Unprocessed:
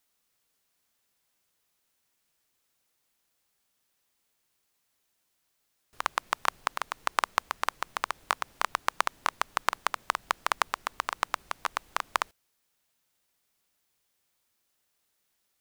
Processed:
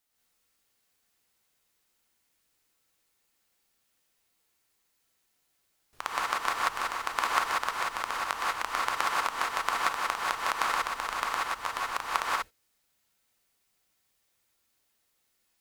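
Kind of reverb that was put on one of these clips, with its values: gated-style reverb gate 210 ms rising, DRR -5.5 dB; trim -4.5 dB

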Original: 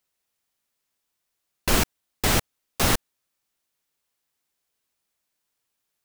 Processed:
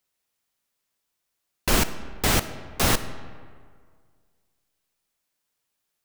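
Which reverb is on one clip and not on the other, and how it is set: algorithmic reverb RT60 1.9 s, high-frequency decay 0.6×, pre-delay 0 ms, DRR 12 dB

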